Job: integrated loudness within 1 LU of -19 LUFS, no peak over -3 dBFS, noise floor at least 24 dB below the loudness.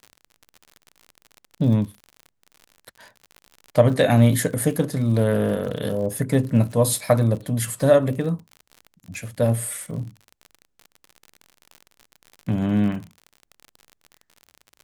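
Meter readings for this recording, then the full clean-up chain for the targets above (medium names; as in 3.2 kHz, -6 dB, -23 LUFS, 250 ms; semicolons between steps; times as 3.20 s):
tick rate 53 per s; loudness -21.5 LUFS; peak level -3.0 dBFS; loudness target -19.0 LUFS
-> de-click; trim +2.5 dB; peak limiter -3 dBFS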